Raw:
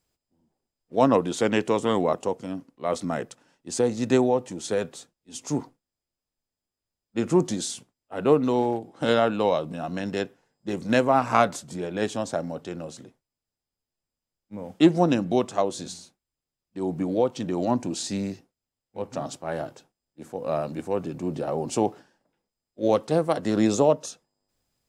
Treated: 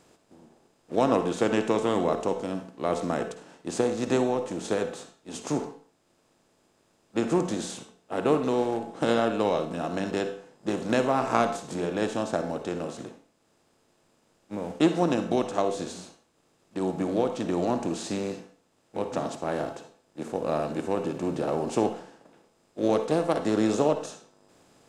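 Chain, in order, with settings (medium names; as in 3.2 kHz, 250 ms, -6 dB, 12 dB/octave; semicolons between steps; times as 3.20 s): spectral levelling over time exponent 0.6; transient shaper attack +3 dB, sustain -3 dB; on a send: peaking EQ 190 Hz -5.5 dB + reverberation RT60 0.45 s, pre-delay 46 ms, DRR 8 dB; on the sum: trim -8 dB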